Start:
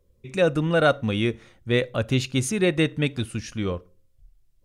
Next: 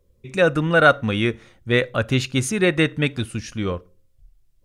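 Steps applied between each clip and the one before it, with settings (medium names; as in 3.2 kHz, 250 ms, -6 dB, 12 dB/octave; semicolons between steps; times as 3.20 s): dynamic bell 1.5 kHz, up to +7 dB, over -39 dBFS, Q 1.2; trim +2 dB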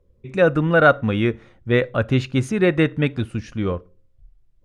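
low-pass 1.5 kHz 6 dB/octave; trim +2 dB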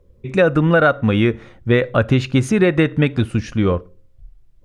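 compression 5:1, threshold -18 dBFS, peak gain reduction 10 dB; trim +7.5 dB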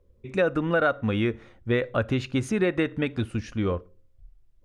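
peaking EQ 150 Hz -8 dB 0.37 oct; trim -8.5 dB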